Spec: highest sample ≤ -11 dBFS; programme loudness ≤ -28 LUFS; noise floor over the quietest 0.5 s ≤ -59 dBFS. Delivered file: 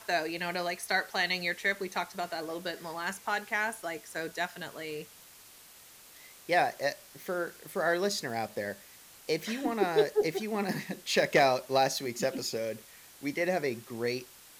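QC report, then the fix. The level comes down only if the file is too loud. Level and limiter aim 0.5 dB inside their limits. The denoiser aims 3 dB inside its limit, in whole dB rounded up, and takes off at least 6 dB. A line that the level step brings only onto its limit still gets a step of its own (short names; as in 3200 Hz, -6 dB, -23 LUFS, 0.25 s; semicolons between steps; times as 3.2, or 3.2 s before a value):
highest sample -13.5 dBFS: OK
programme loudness -31.5 LUFS: OK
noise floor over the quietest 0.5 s -54 dBFS: fail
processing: denoiser 8 dB, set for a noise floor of -54 dBFS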